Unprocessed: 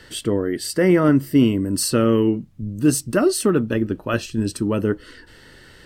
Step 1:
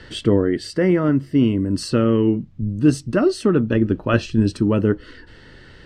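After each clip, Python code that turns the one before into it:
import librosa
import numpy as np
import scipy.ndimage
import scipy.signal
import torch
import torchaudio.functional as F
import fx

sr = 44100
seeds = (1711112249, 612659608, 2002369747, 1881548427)

y = scipy.signal.sosfilt(scipy.signal.butter(2, 4700.0, 'lowpass', fs=sr, output='sos'), x)
y = fx.low_shelf(y, sr, hz=270.0, db=5.0)
y = fx.rider(y, sr, range_db=4, speed_s=0.5)
y = y * librosa.db_to_amplitude(-1.0)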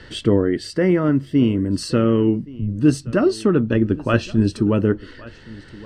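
y = x + 10.0 ** (-21.0 / 20.0) * np.pad(x, (int(1122 * sr / 1000.0), 0))[:len(x)]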